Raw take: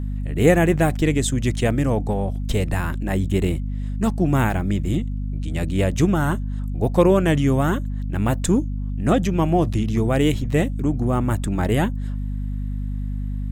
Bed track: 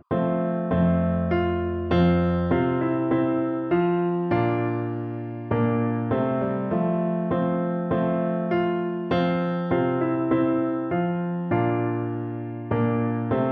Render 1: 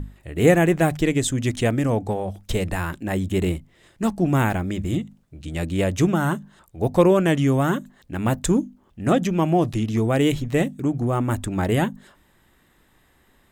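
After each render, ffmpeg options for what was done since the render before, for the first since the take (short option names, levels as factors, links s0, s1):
-af "bandreject=f=50:t=h:w=6,bandreject=f=100:t=h:w=6,bandreject=f=150:t=h:w=6,bandreject=f=200:t=h:w=6,bandreject=f=250:t=h:w=6"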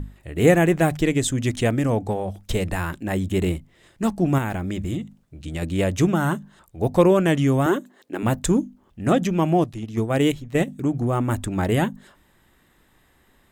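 -filter_complex "[0:a]asettb=1/sr,asplit=3[s0][s1][s2];[s0]atrim=end=4.384[s3];[s1]atrim=start=4.38:end=5.62,asetpts=PTS-STARTPTS,afade=t=in:d=0.004:c=qsin,afade=t=out:st=1.236:d=0.004:c=qsin,acompressor=threshold=0.0708:ratio=3:attack=3.2:release=140:knee=1:detection=peak[s4];[s2]atrim=start=5.616[s5];[s3][s4]acrossfade=d=0.004:c1=hsin:c2=qsin[s6];[s6][s5]acrossfade=d=0.004:c1=qsin:c2=hsin,asettb=1/sr,asplit=3[s7][s8][s9];[s7]atrim=end=7.664[s10];[s8]atrim=start=7.66:end=8.23,asetpts=PTS-STARTPTS,afade=t=in:d=0.004:c=qsin,afade=t=out:st=0.566:d=0.004:c=qsin,highpass=f=350:t=q:w=2.1[s11];[s9]atrim=start=8.226[s12];[s10][s11]acrossfade=d=0.004:c1=hsin:c2=qsin[s13];[s13][s12]acrossfade=d=0.004:c1=qsin:c2=hsin,asettb=1/sr,asplit=3[s14][s15][s16];[s14]atrim=end=9.644[s17];[s15]atrim=start=9.64:end=10.68,asetpts=PTS-STARTPTS,afade=t=in:d=0.004:c=qsin,afade=t=out:st=1.036:d=0.004:c=qsin,agate=range=0.355:threshold=0.0891:ratio=16:release=100:detection=peak[s18];[s16]atrim=start=10.676[s19];[s17][s18]acrossfade=d=0.004:c1=hsin:c2=qsin[s20];[s20][s19]acrossfade=d=0.004:c1=qsin:c2=hsin"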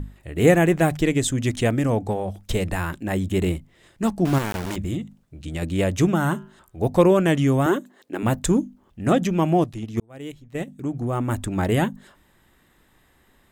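-filter_complex "[0:a]asettb=1/sr,asplit=3[s0][s1][s2];[s0]atrim=end=4.254[s3];[s1]atrim=start=4.25:end=4.76,asetpts=PTS-STARTPTS,afade=t=in:d=0.004:c=qsin,afade=t=out:st=0.506:d=0.004:c=qsin,aeval=exprs='val(0)*gte(abs(val(0)),0.0562)':c=same[s4];[s2]atrim=start=4.756[s5];[s3][s4]acrossfade=d=0.004:c1=hsin:c2=qsin[s6];[s6][s5]acrossfade=d=0.004:c1=qsin:c2=hsin,asettb=1/sr,asplit=3[s7][s8][s9];[s7]atrim=end=6.314[s10];[s8]atrim=start=6.31:end=6.8,asetpts=PTS-STARTPTS,afade=t=in:d=0.004:c=qsin,afade=t=out:st=0.486:d=0.004:c=qsin,bandreject=f=127:t=h:w=4,bandreject=f=254:t=h:w=4,bandreject=f=381:t=h:w=4,bandreject=f=508:t=h:w=4,bandreject=f=635:t=h:w=4,bandreject=f=762:t=h:w=4,bandreject=f=889:t=h:w=4,bandreject=f=1016:t=h:w=4,bandreject=f=1143:t=h:w=4,bandreject=f=1270:t=h:w=4,bandreject=f=1397:t=h:w=4,bandreject=f=1524:t=h:w=4,bandreject=f=1651:t=h:w=4,bandreject=f=1778:t=h:w=4,bandreject=f=1905:t=h:w=4,bandreject=f=2032:t=h:w=4,bandreject=f=2159:t=h:w=4,bandreject=f=2286:t=h:w=4,bandreject=f=2413:t=h:w=4,bandreject=f=2540:t=h:w=4,bandreject=f=2667:t=h:w=4,bandreject=f=2794:t=h:w=4,bandreject=f=2921:t=h:w=4,bandreject=f=3048:t=h:w=4,bandreject=f=3175:t=h:w=4,bandreject=f=3302:t=h:w=4[s11];[s9]atrim=start=6.796[s12];[s10][s11]acrossfade=d=0.004:c1=hsin:c2=qsin[s13];[s13][s12]acrossfade=d=0.004:c1=qsin:c2=hsin,asplit=2[s14][s15];[s14]atrim=end=10,asetpts=PTS-STARTPTS,afade=t=out:st=9.996:d=0.004:c=hsin[s16];[s15]atrim=start=10,asetpts=PTS-STARTPTS,afade=t=in:d=1.53[s17];[s16][s17]concat=n=2:v=0:a=1"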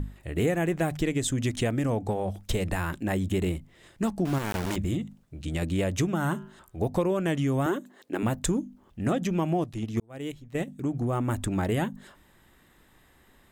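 -af "acompressor=threshold=0.0631:ratio=4"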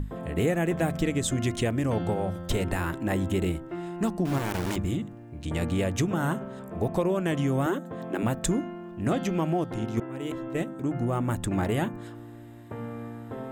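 -filter_complex "[1:a]volume=0.2[s0];[0:a][s0]amix=inputs=2:normalize=0"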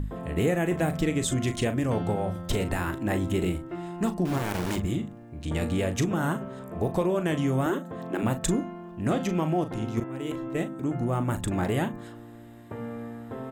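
-filter_complex "[0:a]asplit=2[s0][s1];[s1]adelay=39,volume=0.316[s2];[s0][s2]amix=inputs=2:normalize=0"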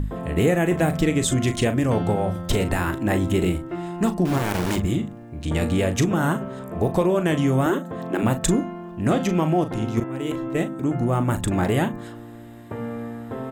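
-af "volume=1.88"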